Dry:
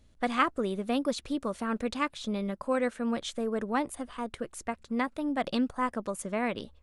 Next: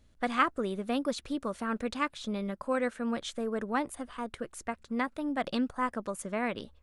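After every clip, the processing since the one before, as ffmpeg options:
-af "equalizer=f=1.5k:t=o:w=0.73:g=3,volume=-2dB"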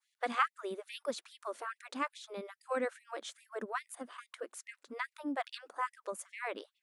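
-af "adynamicequalizer=threshold=0.00316:dfrequency=3400:dqfactor=0.76:tfrequency=3400:tqfactor=0.76:attack=5:release=100:ratio=0.375:range=2.5:mode=cutabove:tftype=bell,afftfilt=real='re*gte(b*sr/1024,210*pow(1900/210,0.5+0.5*sin(2*PI*2.4*pts/sr)))':imag='im*gte(b*sr/1024,210*pow(1900/210,0.5+0.5*sin(2*PI*2.4*pts/sr)))':win_size=1024:overlap=0.75,volume=-3dB"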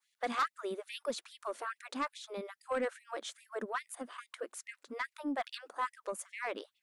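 -af "asoftclip=type=tanh:threshold=-27dB,volume=2dB"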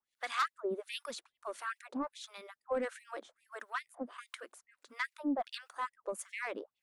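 -filter_complex "[0:a]acrossover=split=990[a][b];[a]aeval=exprs='val(0)*(1-1/2+1/2*cos(2*PI*1.5*n/s))':c=same[c];[b]aeval=exprs='val(0)*(1-1/2-1/2*cos(2*PI*1.5*n/s))':c=same[d];[c][d]amix=inputs=2:normalize=0,volume=3.5dB"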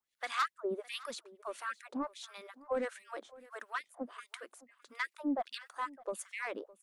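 -af "aecho=1:1:611:0.0891"

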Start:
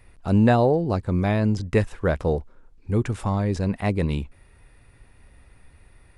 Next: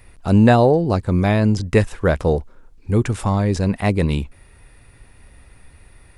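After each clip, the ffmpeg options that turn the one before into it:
-af "highshelf=f=4.4k:g=5,volume=5dB"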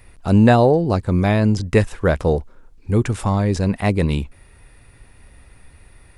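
-af anull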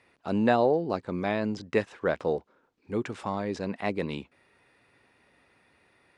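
-af "highpass=250,lowpass=4.8k,volume=-8dB"

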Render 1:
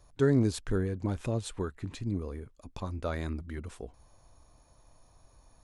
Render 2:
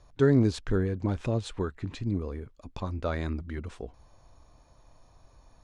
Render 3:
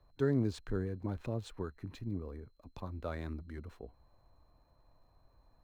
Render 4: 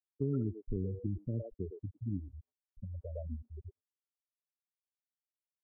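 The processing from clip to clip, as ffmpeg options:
-af "lowpass=5.6k,volume=3dB"
-filter_complex "[0:a]aeval=exprs='val(0)+0.002*sin(2*PI*4100*n/s)':c=same,acrossover=split=100|880|2300[a][b][c][d];[d]aeval=exprs='sgn(val(0))*max(abs(val(0))-0.00188,0)':c=same[e];[a][b][c][e]amix=inputs=4:normalize=0,volume=-9dB"
-filter_complex "[0:a]afftfilt=real='re*gte(hypot(re,im),0.0562)':imag='im*gte(hypot(re,im),0.0562)':win_size=1024:overlap=0.75,acrossover=split=480|2200[a][b][c];[b]adelay=110[d];[c]adelay=180[e];[a][d][e]amix=inputs=3:normalize=0,acrossover=split=270|720[f][g][h];[f]acompressor=threshold=-36dB:ratio=4[i];[g]acompressor=threshold=-43dB:ratio=4[j];[h]acompressor=threshold=-60dB:ratio=4[k];[i][j][k]amix=inputs=3:normalize=0,volume=3.5dB"

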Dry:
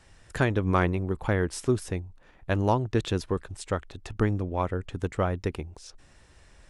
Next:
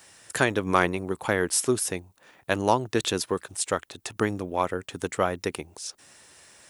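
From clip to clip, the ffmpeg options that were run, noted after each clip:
-af "highpass=95,aemphasis=mode=production:type=bsi,volume=4dB"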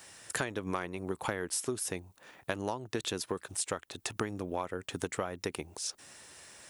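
-af "acompressor=threshold=-30dB:ratio=12"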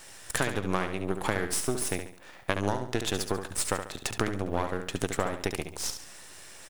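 -filter_complex "[0:a]aeval=exprs='if(lt(val(0),0),0.251*val(0),val(0))':c=same,asplit=2[a][b];[b]aecho=0:1:70|140|210|280:0.398|0.147|0.0545|0.0202[c];[a][c]amix=inputs=2:normalize=0,volume=7dB"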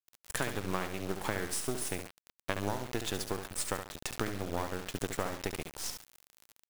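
-af "acrusher=bits=5:mix=0:aa=0.000001,volume=-5.5dB"

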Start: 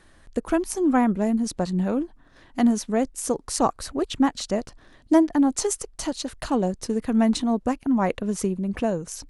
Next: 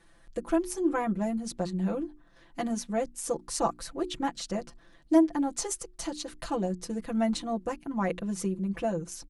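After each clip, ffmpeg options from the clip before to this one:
-af "bandreject=f=60:t=h:w=6,bandreject=f=120:t=h:w=6,bandreject=f=180:t=h:w=6,bandreject=f=240:t=h:w=6,bandreject=f=300:t=h:w=6,bandreject=f=360:t=h:w=6,aecho=1:1:5.9:0.97,volume=-8.5dB"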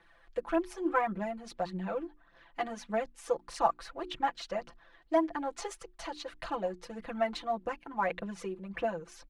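-filter_complex "[0:a]acrossover=split=540 3700:gain=0.224 1 0.1[a][b][c];[a][b][c]amix=inputs=3:normalize=0,aphaser=in_gain=1:out_gain=1:delay=2.9:decay=0.47:speed=1.7:type=triangular,volume=1.5dB"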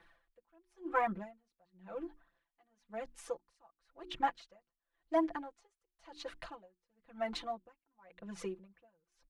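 -af "aeval=exprs='val(0)*pow(10,-37*(0.5-0.5*cos(2*PI*0.95*n/s))/20)':c=same,volume=-1dB"

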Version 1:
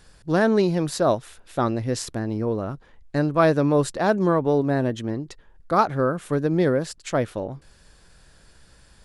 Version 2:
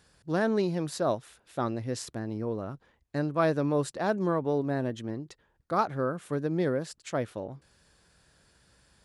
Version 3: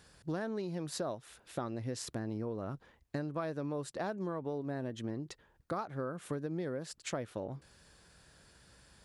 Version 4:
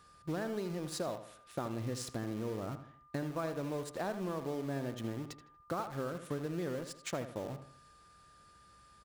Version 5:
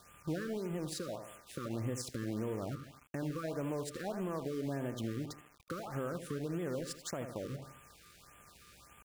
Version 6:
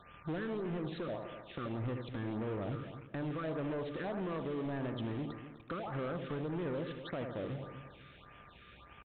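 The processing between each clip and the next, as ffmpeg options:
-af "highpass=68,volume=-7.5dB"
-af "acompressor=threshold=-36dB:ratio=10,volume=2dB"
-filter_complex "[0:a]asplit=2[a][b];[b]acrusher=bits=6:mix=0:aa=0.000001,volume=-4.5dB[c];[a][c]amix=inputs=2:normalize=0,aeval=exprs='val(0)+0.00158*sin(2*PI*1200*n/s)':c=same,asplit=2[d][e];[e]adelay=79,lowpass=f=3k:p=1,volume=-10dB,asplit=2[f][g];[g]adelay=79,lowpass=f=3k:p=1,volume=0.41,asplit=2[h][i];[i]adelay=79,lowpass=f=3k:p=1,volume=0.41,asplit=2[j][k];[k]adelay=79,lowpass=f=3k:p=1,volume=0.41[l];[d][f][h][j][l]amix=inputs=5:normalize=0,volume=-4.5dB"
-af "alimiter=level_in=10.5dB:limit=-24dB:level=0:latency=1:release=256,volume=-10.5dB,aeval=exprs='val(0)*gte(abs(val(0)),0.00126)':c=same,afftfilt=real='re*(1-between(b*sr/1024,740*pow(5000/740,0.5+0.5*sin(2*PI*1.7*pts/sr))/1.41,740*pow(5000/740,0.5+0.5*sin(2*PI*1.7*pts/sr))*1.41))':imag='im*(1-between(b*sr/1024,740*pow(5000/740,0.5+0.5*sin(2*PI*1.7*pts/sr))/1.41,740*pow(5000/740,0.5+0.5*sin(2*PI*1.7*pts/sr))*1.41))':win_size=1024:overlap=0.75,volume=5.5dB"
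-filter_complex "[0:a]aresample=8000,asoftclip=type=tanh:threshold=-38dB,aresample=44100,asplit=2[a][b];[b]adelay=252,lowpass=f=1.5k:p=1,volume=-11.5dB,asplit=2[c][d];[d]adelay=252,lowpass=f=1.5k:p=1,volume=0.32,asplit=2[e][f];[f]adelay=252,lowpass=f=1.5k:p=1,volume=0.32[g];[a][c][e][g]amix=inputs=4:normalize=0,volume=4.5dB"

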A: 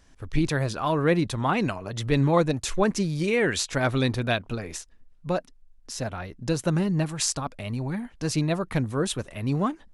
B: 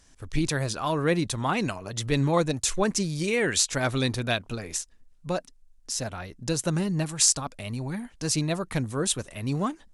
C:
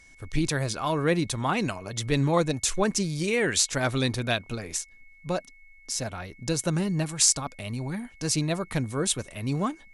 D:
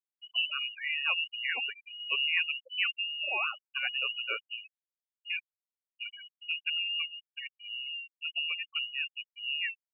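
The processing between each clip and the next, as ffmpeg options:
-af "equalizer=f=8.2k:t=o:w=1.8:g=10,volume=-2.5dB"
-af "aeval=exprs='val(0)+0.00224*sin(2*PI*2200*n/s)':c=same"
-af "aeval=exprs='0.891*(cos(1*acos(clip(val(0)/0.891,-1,1)))-cos(1*PI/2))+0.158*(cos(3*acos(clip(val(0)/0.891,-1,1)))-cos(3*PI/2))':c=same,lowpass=f=2.6k:t=q:w=0.5098,lowpass=f=2.6k:t=q:w=0.6013,lowpass=f=2.6k:t=q:w=0.9,lowpass=f=2.6k:t=q:w=2.563,afreqshift=-3000,afftfilt=real='re*gte(hypot(re,im),0.0398)':imag='im*gte(hypot(re,im),0.0398)':win_size=1024:overlap=0.75"

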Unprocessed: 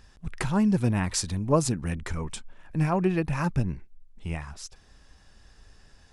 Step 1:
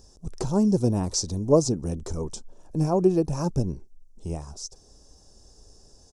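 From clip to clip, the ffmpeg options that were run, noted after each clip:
-filter_complex "[0:a]acrossover=split=5900[a][b];[b]acompressor=threshold=-53dB:ratio=4:attack=1:release=60[c];[a][c]amix=inputs=2:normalize=0,firequalizer=gain_entry='entry(180,0);entry(400,8);entry(1900,-21);entry(5700,11);entry(11000,4)':delay=0.05:min_phase=1"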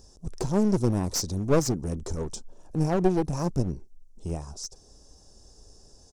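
-af "aeval=exprs='clip(val(0),-1,0.0422)':c=same"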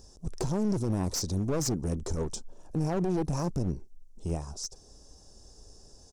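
-af "alimiter=limit=-20dB:level=0:latency=1:release=23"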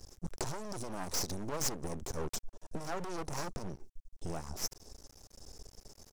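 -filter_complex "[0:a]acrossover=split=510[a][b];[a]acompressor=threshold=-37dB:ratio=6[c];[c][b]amix=inputs=2:normalize=0,aeval=exprs='max(val(0),0)':c=same,volume=4dB"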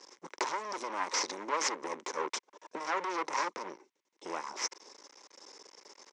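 -af "highpass=f=360:w=0.5412,highpass=f=360:w=1.3066,equalizer=f=430:t=q:w=4:g=-4,equalizer=f=690:t=q:w=4:g=-10,equalizer=f=1k:t=q:w=4:g=8,equalizer=f=2.1k:t=q:w=4:g=8,equalizer=f=4.6k:t=q:w=4:g=-4,lowpass=f=5.8k:w=0.5412,lowpass=f=5.8k:w=1.3066,volume=7dB"

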